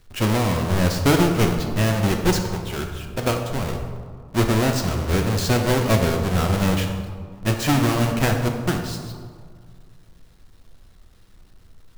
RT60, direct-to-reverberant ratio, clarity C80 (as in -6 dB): 2.0 s, 3.0 dB, 7.0 dB